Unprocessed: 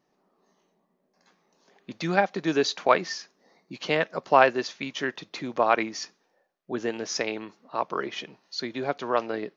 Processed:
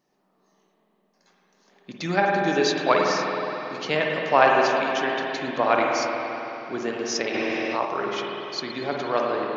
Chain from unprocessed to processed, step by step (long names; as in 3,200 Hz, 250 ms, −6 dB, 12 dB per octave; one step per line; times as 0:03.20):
high-shelf EQ 4,600 Hz +6 dB
spring reverb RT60 3.5 s, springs 47/52 ms, chirp 70 ms, DRR −1.5 dB
0:07.34–0:07.85: envelope flattener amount 70%
level −1 dB